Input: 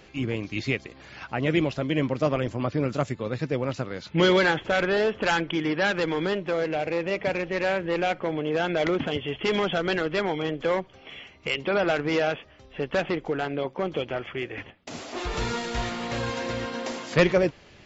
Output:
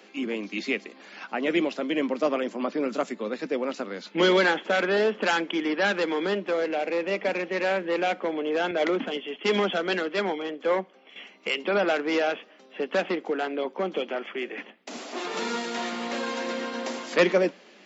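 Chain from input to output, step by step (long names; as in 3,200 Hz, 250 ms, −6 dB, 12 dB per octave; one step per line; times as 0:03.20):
Butterworth high-pass 190 Hz 72 dB per octave
convolution reverb, pre-delay 3 ms, DRR 19.5 dB
0:08.71–0:11.16: multiband upward and downward expander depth 70%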